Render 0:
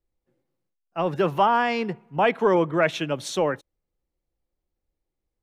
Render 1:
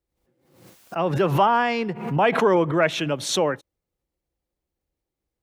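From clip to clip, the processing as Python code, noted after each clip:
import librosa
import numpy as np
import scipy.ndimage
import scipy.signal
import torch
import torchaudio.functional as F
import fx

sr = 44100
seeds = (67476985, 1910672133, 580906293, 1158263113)

y = scipy.signal.sosfilt(scipy.signal.butter(2, 44.0, 'highpass', fs=sr, output='sos'), x)
y = fx.pre_swell(y, sr, db_per_s=77.0)
y = y * 10.0 ** (1.0 / 20.0)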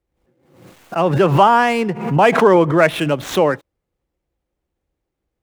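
y = scipy.signal.medfilt(x, 9)
y = y * 10.0 ** (7.0 / 20.0)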